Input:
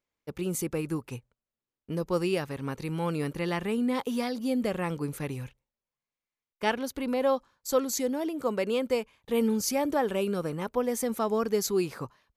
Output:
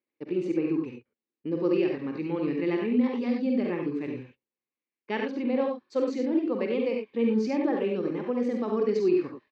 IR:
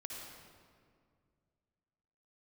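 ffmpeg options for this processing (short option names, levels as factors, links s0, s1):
-filter_complex "[0:a]highpass=220,equalizer=f=230:t=q:w=4:g=4,equalizer=f=330:t=q:w=4:g=8,equalizer=f=660:t=q:w=4:g=-8,equalizer=f=980:t=q:w=4:g=-5,equalizer=f=1400:t=q:w=4:g=-9,equalizer=f=3300:t=q:w=4:g=-8,lowpass=f=3700:w=0.5412,lowpass=f=3700:w=1.3066[s0];[1:a]atrim=start_sample=2205,afade=t=out:st=0.19:d=0.01,atrim=end_sample=8820[s1];[s0][s1]afir=irnorm=-1:irlink=0,atempo=1.3,volume=1.78"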